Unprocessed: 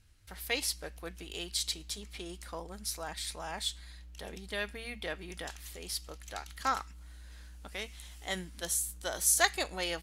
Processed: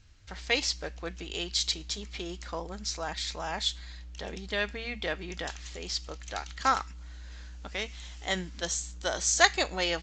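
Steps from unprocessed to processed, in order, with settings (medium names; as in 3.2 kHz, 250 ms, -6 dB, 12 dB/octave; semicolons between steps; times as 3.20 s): trim +5.5 dB; A-law 128 kbps 16 kHz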